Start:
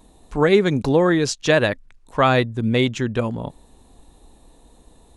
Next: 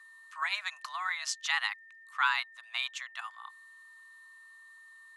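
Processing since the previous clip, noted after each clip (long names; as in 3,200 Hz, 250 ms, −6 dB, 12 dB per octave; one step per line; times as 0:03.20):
steady tone 1,600 Hz −44 dBFS
elliptic high-pass filter 830 Hz, stop band 70 dB
frequency shifter +210 Hz
level −7.5 dB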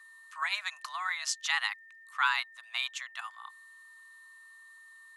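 high-shelf EQ 8,300 Hz +6.5 dB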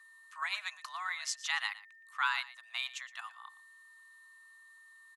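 single-tap delay 117 ms −17 dB
level −4 dB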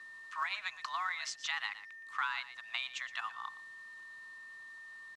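downward compressor 4 to 1, threshold −42 dBFS, peak gain reduction 13.5 dB
log-companded quantiser 6 bits
high-frequency loss of the air 98 metres
level +8.5 dB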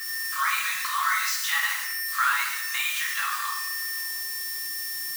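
spike at every zero crossing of −28 dBFS
high-pass filter sweep 1,300 Hz → 250 Hz, 0:03.90–0:04.47
rectangular room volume 270 cubic metres, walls mixed, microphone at 2.2 metres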